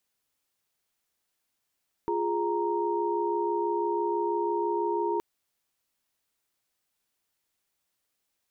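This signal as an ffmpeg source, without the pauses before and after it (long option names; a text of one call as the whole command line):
ffmpeg -f lavfi -i "aevalsrc='0.0335*(sin(2*PI*349.23*t)+sin(2*PI*415.3*t)+sin(2*PI*932.33*t))':duration=3.12:sample_rate=44100" out.wav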